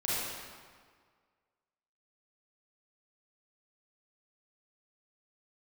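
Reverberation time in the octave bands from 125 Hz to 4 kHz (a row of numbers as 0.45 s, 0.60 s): 1.7 s, 1.7 s, 1.7 s, 1.8 s, 1.5 s, 1.3 s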